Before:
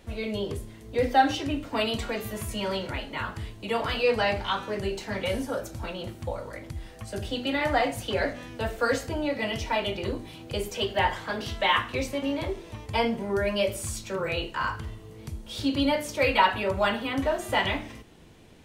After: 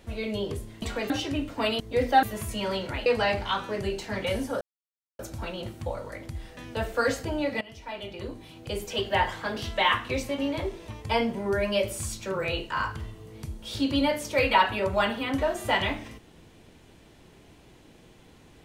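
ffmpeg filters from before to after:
ffmpeg -i in.wav -filter_complex "[0:a]asplit=9[link_01][link_02][link_03][link_04][link_05][link_06][link_07][link_08][link_09];[link_01]atrim=end=0.822[link_10];[link_02]atrim=start=1.948:end=2.232[link_11];[link_03]atrim=start=1.248:end=1.952[link_12];[link_04]atrim=start=0.818:end=1.252[link_13];[link_05]atrim=start=2.228:end=3.062[link_14];[link_06]atrim=start=4.048:end=5.6,asetpts=PTS-STARTPTS,afade=type=out:start_time=1.548:duration=0.004:curve=hsin,apad=pad_dur=0.58[link_15];[link_07]atrim=start=5.6:end=6.982,asetpts=PTS-STARTPTS,afade=type=in:duration=0.004:curve=hsin[link_16];[link_08]atrim=start=8.408:end=9.45,asetpts=PTS-STARTPTS,afade=type=out:start_time=1.038:duration=0.004:curve=hsin:silence=0.11885[link_17];[link_09]atrim=start=9.45,asetpts=PTS-STARTPTS,afade=type=in:duration=1.48:silence=0.11885[link_18];[link_10][link_11]acrossfade=duration=0.004:curve1=hsin:curve2=hsin[link_19];[link_19][link_12]acrossfade=duration=0.004:curve1=hsin:curve2=hsin[link_20];[link_20][link_13]acrossfade=duration=0.004:curve1=hsin:curve2=hsin[link_21];[link_21][link_14]acrossfade=duration=0.004:curve1=hsin:curve2=hsin[link_22];[link_15][link_16]concat=n=2:v=0:a=1[link_23];[link_22][link_23]acrossfade=duration=0.004:curve1=hsin:curve2=hsin[link_24];[link_17][link_18]concat=n=2:v=0:a=1[link_25];[link_24][link_25]acrossfade=duration=0.004:curve1=hsin:curve2=hsin" out.wav

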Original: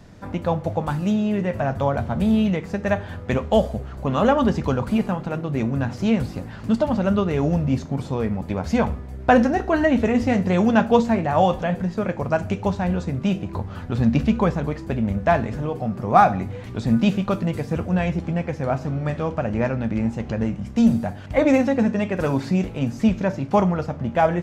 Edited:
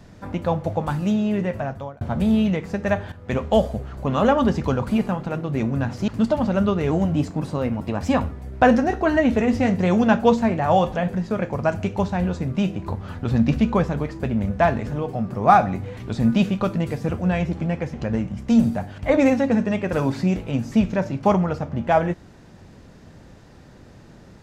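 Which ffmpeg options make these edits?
ffmpeg -i in.wav -filter_complex "[0:a]asplit=7[link_01][link_02][link_03][link_04][link_05][link_06][link_07];[link_01]atrim=end=2.01,asetpts=PTS-STARTPTS,afade=type=out:start_time=1.43:duration=0.58[link_08];[link_02]atrim=start=2.01:end=3.12,asetpts=PTS-STARTPTS,afade=type=in:duration=0.004:curve=hsin,afade=type=out:start_time=1.106:duration=0.004:curve=hsin:silence=0.211349[link_09];[link_03]atrim=start=3.12:end=6.082,asetpts=PTS-STARTPTS,afade=type=in:duration=0.29:silence=0.211349[link_10];[link_04]atrim=start=6.578:end=7.414[link_11];[link_05]atrim=start=7.41:end=8.98,asetpts=PTS-STARTPTS,asetrate=49392,aresample=44100[link_12];[link_06]atrim=start=8.976:end=18.602[link_13];[link_07]atrim=start=20.208[link_14];[link_08][link_09][link_10]concat=n=3:v=0:a=1[link_15];[link_15][link_11]acrossfade=duration=0.004:curve1=hsin:curve2=hsin[link_16];[link_16][link_12]acrossfade=duration=0.004:curve1=hsin:curve2=hsin[link_17];[link_17][link_13]acrossfade=duration=0.004:curve1=hsin:curve2=hsin[link_18];[link_18][link_14]acrossfade=duration=0.004:curve1=hsin:curve2=hsin" out.wav

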